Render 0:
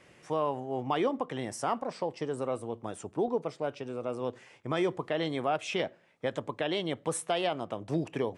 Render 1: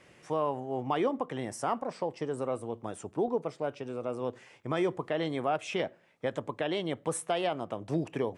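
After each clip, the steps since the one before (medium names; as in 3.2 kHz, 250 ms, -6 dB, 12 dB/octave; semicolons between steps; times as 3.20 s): dynamic bell 4.1 kHz, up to -4 dB, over -51 dBFS, Q 0.95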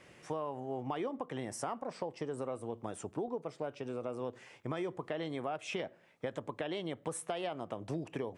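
compression 4:1, threshold -35 dBFS, peak gain reduction 9.5 dB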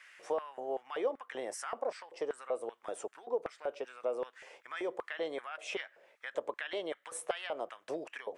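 LFO high-pass square 2.6 Hz 510–1600 Hz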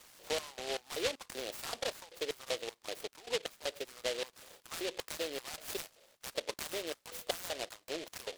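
delay time shaken by noise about 3 kHz, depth 0.19 ms; trim -1.5 dB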